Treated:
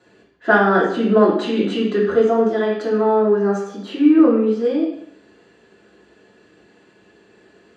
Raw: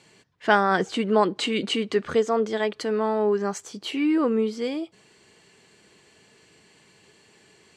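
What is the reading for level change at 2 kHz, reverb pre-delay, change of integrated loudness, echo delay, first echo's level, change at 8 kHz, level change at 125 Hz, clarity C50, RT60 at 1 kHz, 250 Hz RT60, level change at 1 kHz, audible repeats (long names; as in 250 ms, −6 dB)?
+6.0 dB, 3 ms, +7.0 dB, no echo audible, no echo audible, can't be measured, can't be measured, 4.5 dB, 0.70 s, 0.75 s, +4.0 dB, no echo audible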